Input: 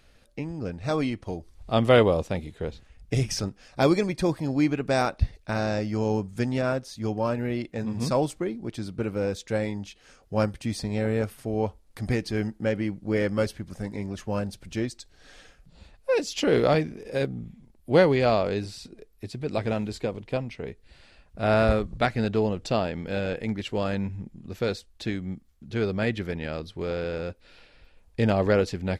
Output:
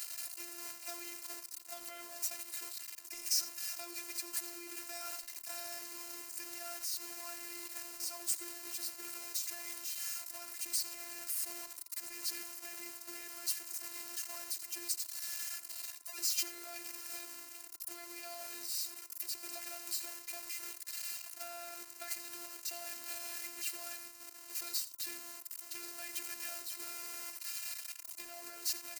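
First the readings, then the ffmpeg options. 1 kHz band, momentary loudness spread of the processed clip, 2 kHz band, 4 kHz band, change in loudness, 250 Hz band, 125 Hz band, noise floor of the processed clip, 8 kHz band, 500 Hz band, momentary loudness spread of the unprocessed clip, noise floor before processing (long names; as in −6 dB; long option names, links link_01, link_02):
−20.0 dB, 8 LU, −14.5 dB, −5.0 dB, −12.5 dB, −30.5 dB, below −40 dB, −53 dBFS, +6.0 dB, −30.5 dB, 14 LU, −58 dBFS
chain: -af "aeval=exprs='val(0)+0.5*0.0891*sgn(val(0))':channel_layout=same,highpass=130,bandreject=frequency=440:width=12,agate=range=-8dB:threshold=-25dB:ratio=16:detection=peak,equalizer=frequency=3400:width=6.7:gain=-13.5,alimiter=limit=-14.5dB:level=0:latency=1,acompressor=threshold=-25dB:ratio=6,afreqshift=28,aderivative,aeval=exprs='val(0)+0.000794*sin(2*PI*1200*n/s)':channel_layout=same,aecho=1:1:86:0.15,afftfilt=real='hypot(re,im)*cos(PI*b)':imag='0':win_size=512:overlap=0.75,volume=1.5dB"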